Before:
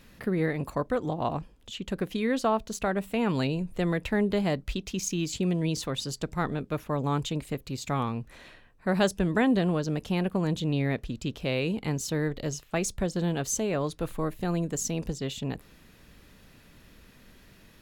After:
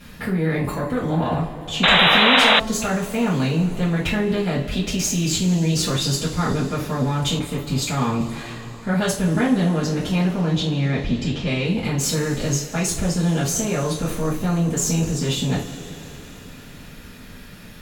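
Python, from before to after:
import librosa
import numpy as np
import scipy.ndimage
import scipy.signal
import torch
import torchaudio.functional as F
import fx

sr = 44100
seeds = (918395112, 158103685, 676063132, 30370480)

p1 = fx.lowpass(x, sr, hz=6300.0, slope=24, at=(10.37, 11.64))
p2 = fx.over_compress(p1, sr, threshold_db=-33.0, ratio=-0.5)
p3 = p1 + (p2 * 10.0 ** (2.0 / 20.0))
p4 = fx.cheby_harmonics(p3, sr, harmonics=(7, 8), levels_db=(-43, -29), full_scale_db=-7.0)
p5 = fx.rev_double_slope(p4, sr, seeds[0], early_s=0.33, late_s=4.4, knee_db=-20, drr_db=-9.0)
p6 = fx.spec_paint(p5, sr, seeds[1], shape='noise', start_s=1.83, length_s=0.77, low_hz=460.0, high_hz=4000.0, level_db=-8.0)
p7 = fx.band_widen(p6, sr, depth_pct=40, at=(7.39, 8.21))
y = p7 * 10.0 ** (-6.5 / 20.0)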